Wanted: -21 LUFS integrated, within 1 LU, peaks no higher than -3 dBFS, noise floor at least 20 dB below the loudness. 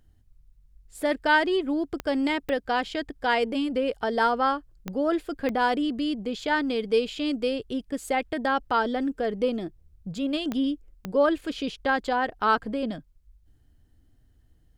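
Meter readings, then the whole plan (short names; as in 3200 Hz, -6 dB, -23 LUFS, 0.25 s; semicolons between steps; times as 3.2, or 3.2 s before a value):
clicks 6; loudness -26.5 LUFS; peak -10.5 dBFS; loudness target -21.0 LUFS
-> de-click; gain +5.5 dB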